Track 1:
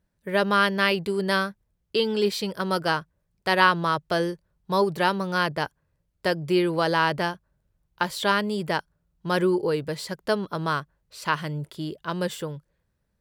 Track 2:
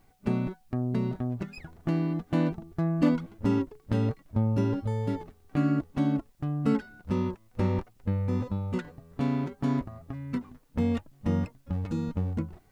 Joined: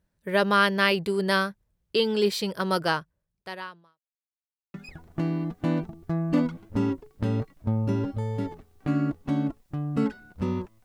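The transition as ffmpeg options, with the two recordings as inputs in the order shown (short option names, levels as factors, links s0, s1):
-filter_complex "[0:a]apad=whole_dur=10.84,atrim=end=10.84,asplit=2[s0][s1];[s0]atrim=end=4.01,asetpts=PTS-STARTPTS,afade=t=out:st=2.84:d=1.17:c=qua[s2];[s1]atrim=start=4.01:end=4.74,asetpts=PTS-STARTPTS,volume=0[s3];[1:a]atrim=start=1.43:end=7.53,asetpts=PTS-STARTPTS,afade=t=in:d=0.004:c=hsin[s4];[s2][s3][s4]concat=n=3:v=0:a=1"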